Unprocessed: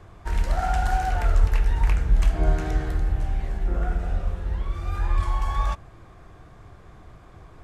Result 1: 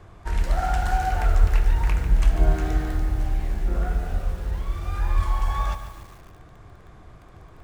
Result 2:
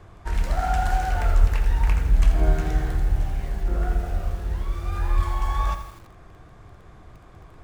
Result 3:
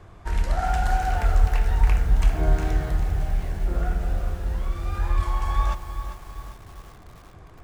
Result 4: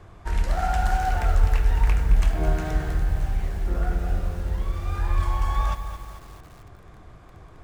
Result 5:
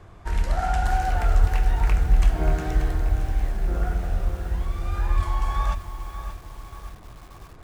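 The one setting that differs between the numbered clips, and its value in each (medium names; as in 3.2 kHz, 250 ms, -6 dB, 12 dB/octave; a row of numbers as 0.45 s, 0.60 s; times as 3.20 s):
bit-crushed delay, time: 145 ms, 83 ms, 398 ms, 218 ms, 582 ms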